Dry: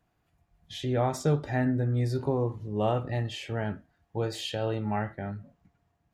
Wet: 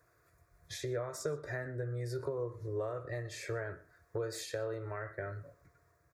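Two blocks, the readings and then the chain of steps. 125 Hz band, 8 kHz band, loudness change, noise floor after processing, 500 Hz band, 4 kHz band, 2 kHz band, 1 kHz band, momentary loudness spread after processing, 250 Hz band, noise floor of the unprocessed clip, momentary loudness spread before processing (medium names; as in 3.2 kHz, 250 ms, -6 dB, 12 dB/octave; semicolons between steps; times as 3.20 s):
-12.0 dB, -1.5 dB, -9.5 dB, -71 dBFS, -6.5 dB, -10.0 dB, -4.0 dB, -13.5 dB, 6 LU, -15.5 dB, -75 dBFS, 11 LU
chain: high-pass 160 Hz 6 dB/octave; peaking EQ 240 Hz -10 dB 0.57 oct; compression 10:1, threshold -42 dBFS, peak gain reduction 19.5 dB; static phaser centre 810 Hz, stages 6; echo from a far wall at 21 m, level -20 dB; trim +10.5 dB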